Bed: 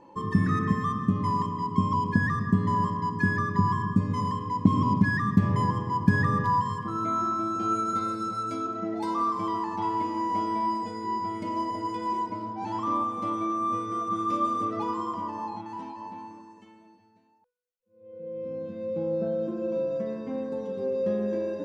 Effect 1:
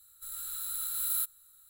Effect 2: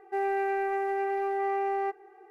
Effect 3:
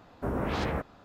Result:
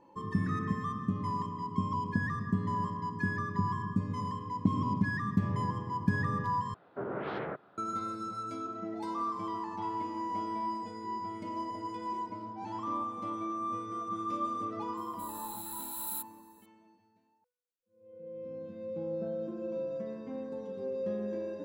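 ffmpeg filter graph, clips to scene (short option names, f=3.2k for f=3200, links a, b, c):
-filter_complex "[0:a]volume=-7.5dB[a];[3:a]highpass=f=130:w=0.5412,highpass=f=130:w=1.3066,equalizer=f=240:t=q:w=4:g=-6,equalizer=f=390:t=q:w=4:g=7,equalizer=f=620:t=q:w=4:g=3,equalizer=f=1.4k:t=q:w=4:g=6,equalizer=f=2.6k:t=q:w=4:g=-4,lowpass=f=3.4k:w=0.5412,lowpass=f=3.4k:w=1.3066[b];[a]asplit=2[c][d];[c]atrim=end=6.744[e];[b]atrim=end=1.04,asetpts=PTS-STARTPTS,volume=-7dB[f];[d]atrim=start=7.776[g];[1:a]atrim=end=1.69,asetpts=PTS-STARTPTS,volume=-7dB,afade=t=in:d=0.004:c=hsin,afade=t=out:st=1.686:d=0.004:c=hsin,adelay=14970[h];[e][f]acrossfade=d=0.004:c1=hsin:c2=hsin[i];[i][g]acrossfade=d=0.004:c1=hsin:c2=hsin[j];[j][h]amix=inputs=2:normalize=0"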